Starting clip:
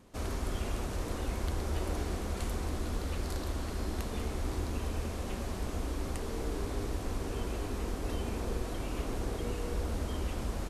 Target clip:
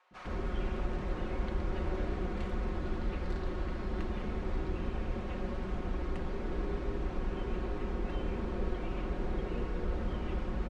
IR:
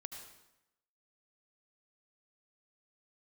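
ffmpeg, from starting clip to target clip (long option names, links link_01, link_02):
-filter_complex "[0:a]lowpass=2400,aecho=1:1:5.5:0.53,acrossover=split=750[link_01][link_02];[link_01]adelay=110[link_03];[link_03][link_02]amix=inputs=2:normalize=0"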